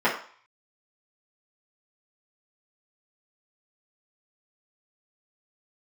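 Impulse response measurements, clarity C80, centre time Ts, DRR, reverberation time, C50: 11.5 dB, 25 ms, -8.5 dB, 0.50 s, 7.5 dB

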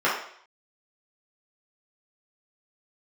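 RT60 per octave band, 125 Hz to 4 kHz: 0.45, 0.55, 0.60, 0.60, 0.60, 0.60 s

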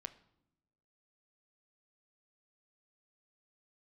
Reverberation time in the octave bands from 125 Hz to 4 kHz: 1.3, 1.2, 0.95, 0.75, 0.60, 0.60 s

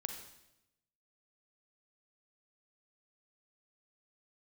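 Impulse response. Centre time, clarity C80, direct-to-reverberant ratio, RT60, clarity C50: 25 ms, 8.5 dB, 4.5 dB, 0.90 s, 5.5 dB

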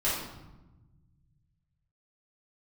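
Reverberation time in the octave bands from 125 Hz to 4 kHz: 2.8, 2.0, 1.1, 1.0, 0.80, 0.70 s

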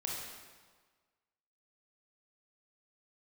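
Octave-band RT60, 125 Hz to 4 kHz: 1.4, 1.4, 1.5, 1.5, 1.3, 1.2 s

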